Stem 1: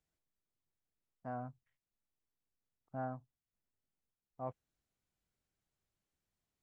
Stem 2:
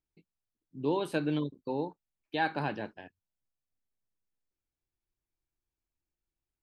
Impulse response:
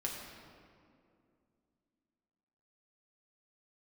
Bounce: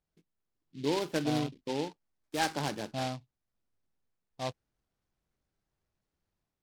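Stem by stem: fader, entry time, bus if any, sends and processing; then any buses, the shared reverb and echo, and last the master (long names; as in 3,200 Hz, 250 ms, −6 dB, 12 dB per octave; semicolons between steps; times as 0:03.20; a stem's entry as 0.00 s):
+2.0 dB, 0.00 s, no send, no processing
−4.5 dB, 0.00 s, no send, no processing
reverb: not used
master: automatic gain control gain up to 4 dB; low-pass filter 2,700 Hz 12 dB per octave; short delay modulated by noise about 3,200 Hz, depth 0.085 ms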